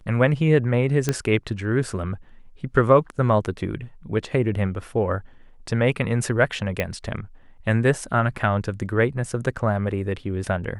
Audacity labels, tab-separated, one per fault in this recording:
1.090000	1.090000	click −7 dBFS
6.800000	6.800000	click −10 dBFS

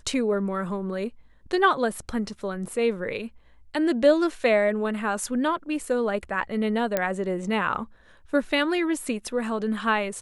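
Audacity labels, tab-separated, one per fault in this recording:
6.970000	6.970000	click −9 dBFS

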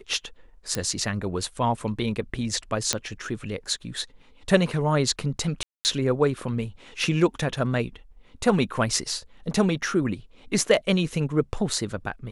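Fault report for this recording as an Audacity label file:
0.750000	0.750000	click −11 dBFS
2.930000	2.930000	click −6 dBFS
5.630000	5.850000	drop-out 219 ms

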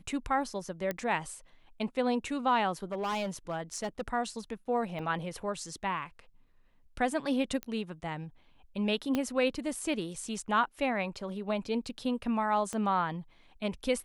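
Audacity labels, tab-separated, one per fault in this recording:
0.910000	0.910000	click −18 dBFS
2.920000	4.010000	clipping −29 dBFS
4.990000	4.990000	drop-out 4.3 ms
7.630000	7.630000	click −21 dBFS
9.150000	9.150000	click −16 dBFS
12.730000	12.730000	click −23 dBFS

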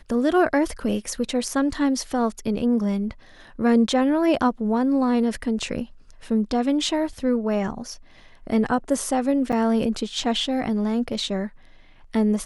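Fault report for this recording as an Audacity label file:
9.520000	9.530000	drop-out 6.9 ms

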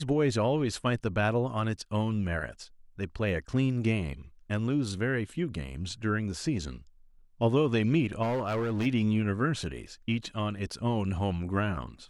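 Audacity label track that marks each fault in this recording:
8.220000	8.870000	clipping −26 dBFS

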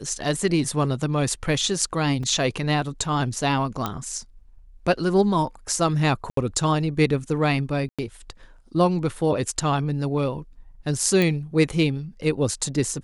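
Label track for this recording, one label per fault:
2.230000	2.230000	drop-out 4.2 ms
3.860000	3.860000	click −11 dBFS
6.300000	6.370000	drop-out 73 ms
7.890000	7.990000	drop-out 96 ms
11.220000	11.220000	click

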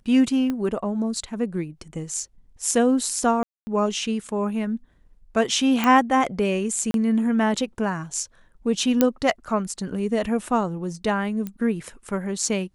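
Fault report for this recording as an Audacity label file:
0.500000	0.500000	click −15 dBFS
3.430000	3.670000	drop-out 240 ms
5.840000	5.840000	click −9 dBFS
6.910000	6.940000	drop-out 32 ms
9.010000	9.010000	click −4 dBFS
11.470000	11.470000	click −18 dBFS

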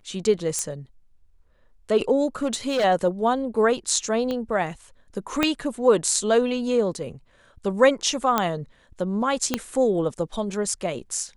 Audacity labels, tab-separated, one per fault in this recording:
0.590000	0.590000	click −12 dBFS
2.420000	2.850000	clipping −18.5 dBFS
4.310000	4.310000	click −16 dBFS
5.430000	5.430000	click −6 dBFS
8.380000	8.380000	click −6 dBFS
9.540000	9.540000	click −6 dBFS

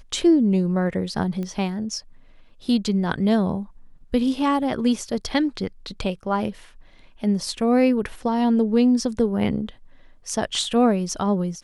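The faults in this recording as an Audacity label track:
1.430000	1.430000	click −20 dBFS

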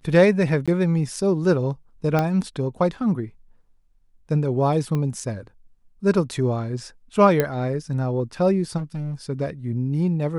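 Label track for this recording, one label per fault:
0.660000	0.680000	drop-out 16 ms
2.190000	2.190000	click −9 dBFS
4.950000	4.950000	click −15 dBFS
7.400000	7.400000	click −7 dBFS
8.770000	9.140000	clipping −25 dBFS

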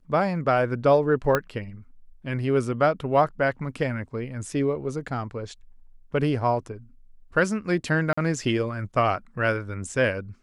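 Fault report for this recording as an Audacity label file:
1.350000	1.350000	click −8 dBFS
8.130000	8.180000	drop-out 45 ms

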